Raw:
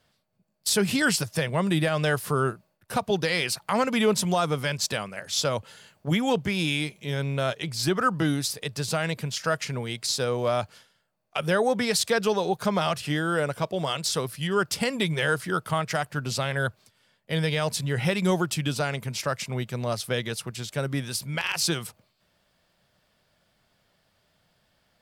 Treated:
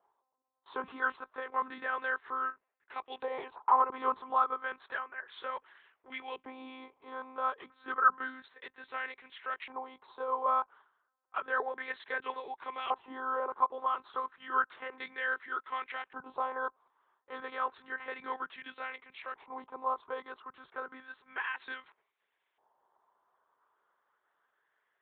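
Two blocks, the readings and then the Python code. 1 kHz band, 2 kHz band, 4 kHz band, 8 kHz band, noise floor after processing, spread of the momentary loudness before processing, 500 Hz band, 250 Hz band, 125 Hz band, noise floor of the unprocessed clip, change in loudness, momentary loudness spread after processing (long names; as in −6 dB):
−1.5 dB, −7.0 dB, −22.0 dB, below −40 dB, −83 dBFS, 7 LU, −14.5 dB, −23.5 dB, below −40 dB, −70 dBFS, −9.0 dB, 15 LU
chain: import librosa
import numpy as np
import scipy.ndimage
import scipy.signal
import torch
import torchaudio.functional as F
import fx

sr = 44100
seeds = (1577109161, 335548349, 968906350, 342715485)

y = fx.lpc_monotone(x, sr, seeds[0], pitch_hz=260.0, order=10)
y = fx.graphic_eq_15(y, sr, hz=(400, 1000, 2500), db=(12, 11, -5))
y = fx.filter_lfo_bandpass(y, sr, shape='saw_up', hz=0.31, low_hz=860.0, high_hz=2400.0, q=3.0)
y = F.gain(torch.from_numpy(y), -3.0).numpy()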